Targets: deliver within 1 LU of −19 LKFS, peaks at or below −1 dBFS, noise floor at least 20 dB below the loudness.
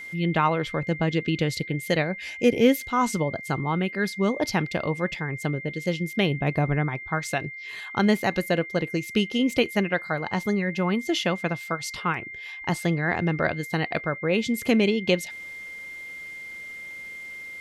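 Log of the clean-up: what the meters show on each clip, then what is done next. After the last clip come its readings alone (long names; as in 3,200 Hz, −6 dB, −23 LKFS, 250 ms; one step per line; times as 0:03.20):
interfering tone 2,100 Hz; level of the tone −36 dBFS; integrated loudness −25.5 LKFS; sample peak −6.5 dBFS; target loudness −19.0 LKFS
→ notch filter 2,100 Hz, Q 30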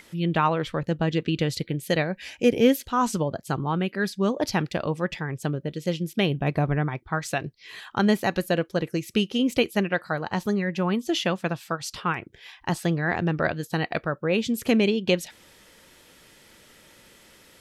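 interfering tone none found; integrated loudness −26.0 LKFS; sample peak −7.0 dBFS; target loudness −19.0 LKFS
→ level +7 dB
brickwall limiter −1 dBFS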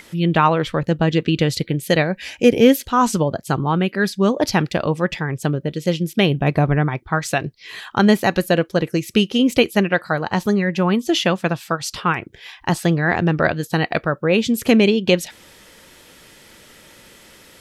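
integrated loudness −19.0 LKFS; sample peak −1.0 dBFS; background noise floor −47 dBFS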